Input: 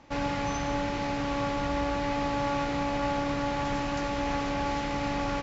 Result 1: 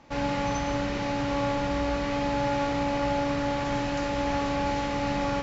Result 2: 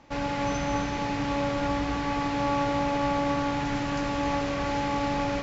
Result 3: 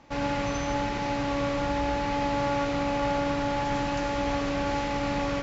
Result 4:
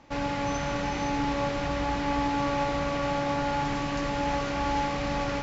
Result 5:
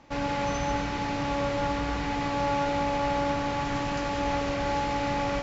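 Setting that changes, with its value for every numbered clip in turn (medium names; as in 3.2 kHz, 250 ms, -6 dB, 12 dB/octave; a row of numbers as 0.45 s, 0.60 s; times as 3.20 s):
gated-style reverb, gate: 80 ms, 320 ms, 130 ms, 530 ms, 220 ms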